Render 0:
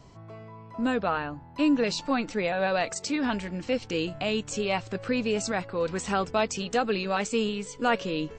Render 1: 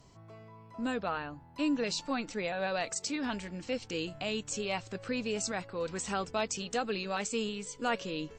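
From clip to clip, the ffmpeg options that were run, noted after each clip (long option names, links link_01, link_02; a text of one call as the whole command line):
ffmpeg -i in.wav -af "aemphasis=mode=production:type=cd,volume=-7dB" out.wav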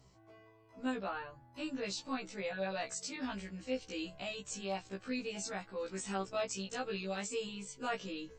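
ffmpeg -i in.wav -af "afftfilt=real='re*1.73*eq(mod(b,3),0)':imag='im*1.73*eq(mod(b,3),0)':win_size=2048:overlap=0.75,volume=-3dB" out.wav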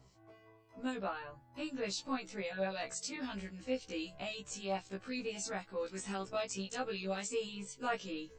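ffmpeg -i in.wav -filter_complex "[0:a]acrossover=split=2500[link_01][link_02];[link_01]aeval=exprs='val(0)*(1-0.5/2+0.5/2*cos(2*PI*3.8*n/s))':channel_layout=same[link_03];[link_02]aeval=exprs='val(0)*(1-0.5/2-0.5/2*cos(2*PI*3.8*n/s))':channel_layout=same[link_04];[link_03][link_04]amix=inputs=2:normalize=0,volume=2dB" out.wav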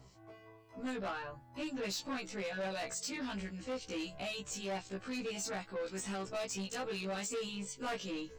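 ffmpeg -i in.wav -af "asoftclip=type=tanh:threshold=-39dB,volume=4.5dB" out.wav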